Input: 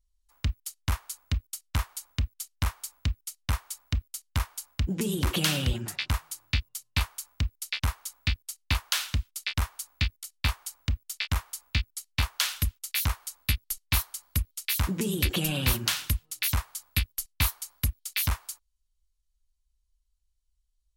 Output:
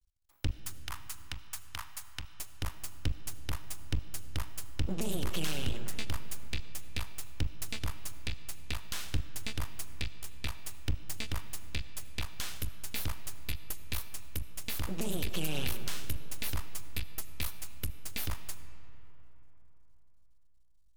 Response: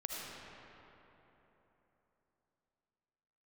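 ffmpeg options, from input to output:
-filter_complex "[0:a]alimiter=limit=0.0668:level=0:latency=1:release=436,aeval=exprs='max(val(0),0)':c=same,asettb=1/sr,asplit=3[s0][s1][s2];[s0]atrim=end=0.594[s3];[s1]atrim=start=0.59:end=2.34,asetpts=PTS-STARTPTS,afade=t=in:d=0.004:c=qsin,afade=t=out:st=1.746:d=0.004:c=qsin,lowshelf=f=680:t=q:w=1.5:g=-12.5[s4];[s2]atrim=start=2.336[s5];[s3][s4]acrossfade=d=0.004:c1=hsin:c2=qsin[s6];[s6][s5]acrossfade=d=0.004:c1=qsin:c2=hsin,asplit=2[s7][s8];[1:a]atrim=start_sample=2205[s9];[s8][s9]afir=irnorm=-1:irlink=0,volume=0.316[s10];[s7][s10]amix=inputs=2:normalize=0,volume=1.12"

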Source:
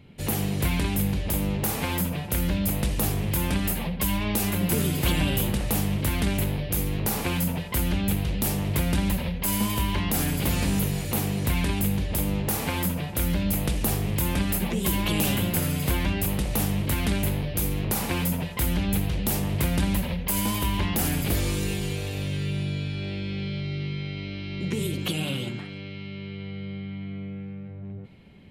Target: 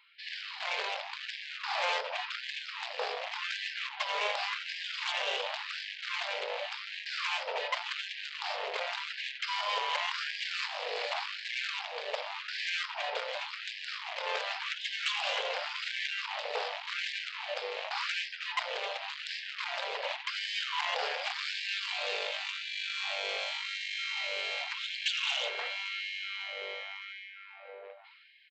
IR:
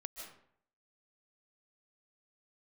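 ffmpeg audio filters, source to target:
-af "dynaudnorm=f=160:g=9:m=3.35,alimiter=limit=0.266:level=0:latency=1:release=298,aresample=11025,aresample=44100,aresample=16000,asoftclip=type=tanh:threshold=0.0841,aresample=44100,afftfilt=real='re*gte(b*sr/1024,410*pow(1600/410,0.5+0.5*sin(2*PI*0.89*pts/sr)))':imag='im*gte(b*sr/1024,410*pow(1600/410,0.5+0.5*sin(2*PI*0.89*pts/sr)))':win_size=1024:overlap=0.75"

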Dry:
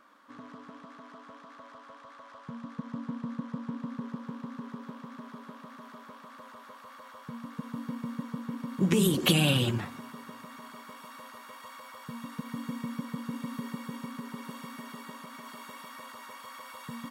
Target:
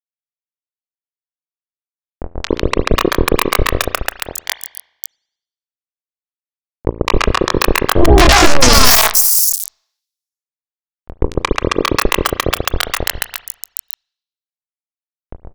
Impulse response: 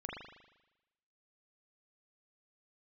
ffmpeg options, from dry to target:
-filter_complex "[0:a]acompressor=threshold=0.0158:ratio=2,acrusher=bits=4:mix=0:aa=0.000001,asetrate=48510,aresample=44100,acrossover=split=420|4300[s0][s1][s2];[s1]adelay=210[s3];[s2]adelay=760[s4];[s0][s3][s4]amix=inputs=3:normalize=0,asetrate=74167,aresample=44100,atempo=0.594604,asubboost=boost=10:cutoff=67,acompressor=mode=upward:threshold=0.00282:ratio=2.5,asplit=2[s5][s6];[1:a]atrim=start_sample=2205,asetrate=48510,aresample=44100[s7];[s6][s7]afir=irnorm=-1:irlink=0,volume=0.211[s8];[s5][s8]amix=inputs=2:normalize=0,apsyclip=33.5,volume=0.841"

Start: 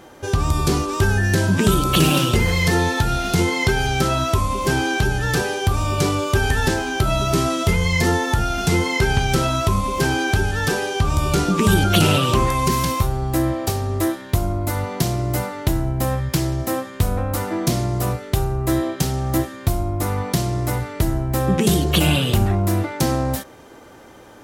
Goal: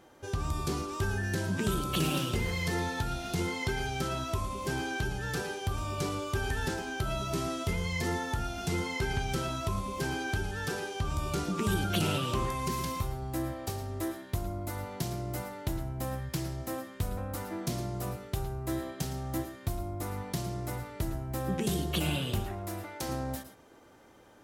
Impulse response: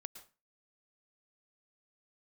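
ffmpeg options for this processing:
-filter_complex "[0:a]asettb=1/sr,asplit=3[s0][s1][s2];[s0]atrim=end=22.404[s3];[s1]atrim=start=22.4:end=23.09,asetpts=PTS-STARTPTS,afade=t=in:d=0.004:c=qsin,afade=t=out:st=0.686:d=0.004:c=qsin,equalizer=f=160:t=o:w=1.5:g=-12[s4];[s2]atrim=start=23.086[s5];[s3][s4]acrossfade=d=0.004:c1=hsin:c2=qsin[s6];[s6][s5]acrossfade=d=0.004:c1=qsin:c2=hsin[s7];[1:a]atrim=start_sample=2205,afade=t=out:st=0.17:d=0.01,atrim=end_sample=7938[s8];[s7][s8]afir=irnorm=-1:irlink=0,volume=0.376"

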